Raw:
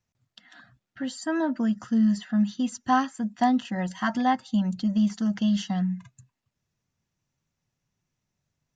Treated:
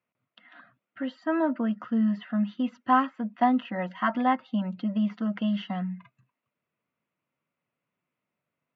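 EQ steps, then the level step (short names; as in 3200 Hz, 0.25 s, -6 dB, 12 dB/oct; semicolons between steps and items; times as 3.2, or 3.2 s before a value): speaker cabinet 300–2400 Hz, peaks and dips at 380 Hz -5 dB, 820 Hz -9 dB, 1700 Hz -9 dB; low shelf 390 Hz -3.5 dB; +6.5 dB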